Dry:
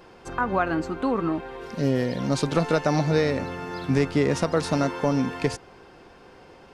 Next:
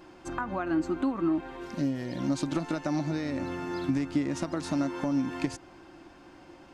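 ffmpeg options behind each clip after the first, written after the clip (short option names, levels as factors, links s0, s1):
-af "acompressor=threshold=0.0562:ratio=6,superequalizer=6b=2.51:7b=0.355:15b=1.41,volume=0.668"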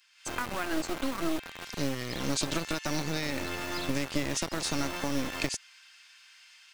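-filter_complex "[0:a]acrossover=split=2000[s0][s1];[s0]acrusher=bits=3:dc=4:mix=0:aa=0.000001[s2];[s1]dynaudnorm=f=120:g=3:m=3.16[s3];[s2][s3]amix=inputs=2:normalize=0"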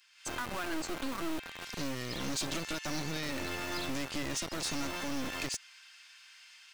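-af "asoftclip=type=tanh:threshold=0.0376"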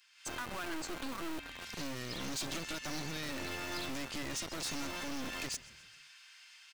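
-filter_complex "[0:a]asplit=5[s0][s1][s2][s3][s4];[s1]adelay=131,afreqshift=-37,volume=0.0841[s5];[s2]adelay=262,afreqshift=-74,volume=0.049[s6];[s3]adelay=393,afreqshift=-111,volume=0.0282[s7];[s4]adelay=524,afreqshift=-148,volume=0.0164[s8];[s0][s5][s6][s7][s8]amix=inputs=5:normalize=0,asoftclip=type=hard:threshold=0.0224,volume=0.841"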